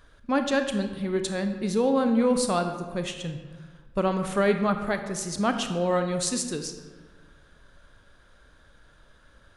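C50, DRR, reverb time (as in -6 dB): 8.0 dB, 7.0 dB, 1.5 s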